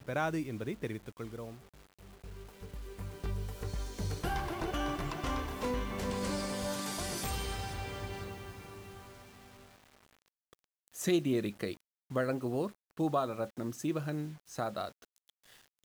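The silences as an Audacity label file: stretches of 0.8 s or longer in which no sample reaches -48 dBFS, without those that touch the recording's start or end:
9.610000	10.530000	silence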